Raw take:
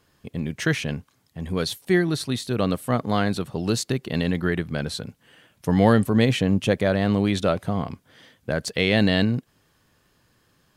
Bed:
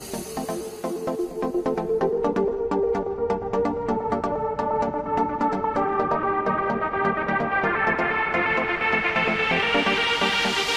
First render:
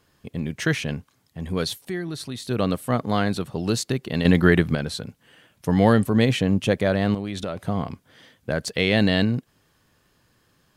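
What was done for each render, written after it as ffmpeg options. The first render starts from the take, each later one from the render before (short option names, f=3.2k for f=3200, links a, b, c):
-filter_complex "[0:a]asettb=1/sr,asplit=3[a][b][c];[a]atrim=end=1.814[d];[b]atrim=start=1.81:end=2.49,asetpts=PTS-STARTPTS,afade=t=in:d=0.004:c=qsin,afade=t=out:st=0.676:d=0.004:c=qsin,acompressor=threshold=-33dB:ratio=2:attack=3.2:release=140:knee=1:detection=peak[e];[c]atrim=start=2.486[f];[d][e]acrossfade=d=0.004:c1=hsin:c2=qsin[g];[g][f]acrossfade=d=0.004:c1=qsin:c2=hsin,asettb=1/sr,asplit=3[h][i][j];[h]atrim=end=7.144[k];[i]atrim=start=7.14:end=7.65,asetpts=PTS-STARTPTS,afade=t=in:d=0.004:c=qsin,afade=t=out:st=0.506:d=0.004:c=qsin,acompressor=threshold=-25dB:ratio=6:attack=3.2:release=140:knee=1:detection=peak[l];[j]atrim=start=7.646[m];[k][l]acrossfade=d=0.004:c1=hsin:c2=qsin[n];[n][m]acrossfade=d=0.004:c1=qsin:c2=hsin,asplit=3[o][p][q];[o]atrim=end=4.252[r];[p]atrim=start=4.248:end=4.752,asetpts=PTS-STARTPTS,volume=7.5dB[s];[q]atrim=start=4.748[t];[r][s]acrossfade=d=0.004:c1=hsin:c2=hsin[u];[u][t]acrossfade=d=0.004:c1=hsin:c2=hsin"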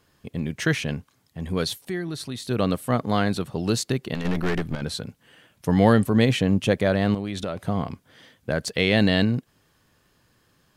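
-filter_complex "[0:a]asettb=1/sr,asplit=3[a][b][c];[a]atrim=end=4.144[d];[b]atrim=start=4.14:end=4.82,asetpts=PTS-STARTPTS,afade=t=in:d=0.004:c=qsin,afade=t=out:st=0.676:d=0.004:c=qsin,aeval=exprs='(tanh(11.2*val(0)+0.8)-tanh(0.8))/11.2':c=same[e];[c]atrim=start=4.816[f];[d][e]acrossfade=d=0.004:c1=hsin:c2=qsin[g];[g][f]acrossfade=d=0.004:c1=qsin:c2=hsin"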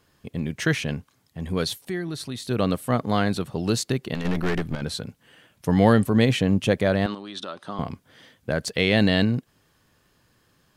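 -filter_complex "[0:a]asettb=1/sr,asplit=3[a][b][c];[a]atrim=end=7.064[d];[b]atrim=start=7.06:end=7.79,asetpts=PTS-STARTPTS,afade=t=in:d=0.004:c=qsin,afade=t=out:st=0.726:d=0.004:c=qsin,highpass=370,equalizer=f=470:t=q:w=4:g=-9,equalizer=f=690:t=q:w=4:g=-7,equalizer=f=1.2k:t=q:w=4:g=3,equalizer=f=2.2k:t=q:w=4:g=-10,equalizer=f=3.6k:t=q:w=4:g=4,equalizer=f=7.2k:t=q:w=4:g=-9,lowpass=f=8.7k:w=0.5412,lowpass=f=8.7k:w=1.3066[e];[c]atrim=start=7.786[f];[d][e]acrossfade=d=0.004:c1=hsin:c2=qsin[g];[g][f]acrossfade=d=0.004:c1=qsin:c2=hsin"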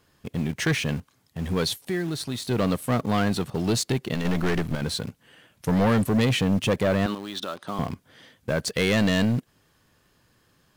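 -filter_complex "[0:a]asplit=2[a][b];[b]acrusher=bits=5:mix=0:aa=0.000001,volume=-9dB[c];[a][c]amix=inputs=2:normalize=0,asoftclip=type=tanh:threshold=-16.5dB"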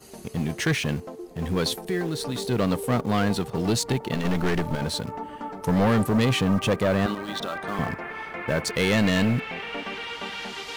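-filter_complex "[1:a]volume=-12dB[a];[0:a][a]amix=inputs=2:normalize=0"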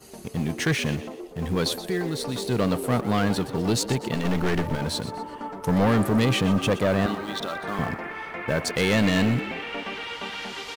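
-filter_complex "[0:a]asplit=5[a][b][c][d][e];[b]adelay=123,afreqshift=85,volume=-14dB[f];[c]adelay=246,afreqshift=170,volume=-21.3dB[g];[d]adelay=369,afreqshift=255,volume=-28.7dB[h];[e]adelay=492,afreqshift=340,volume=-36dB[i];[a][f][g][h][i]amix=inputs=5:normalize=0"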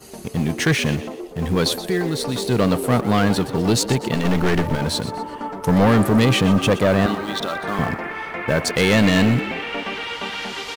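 -af "volume=5.5dB"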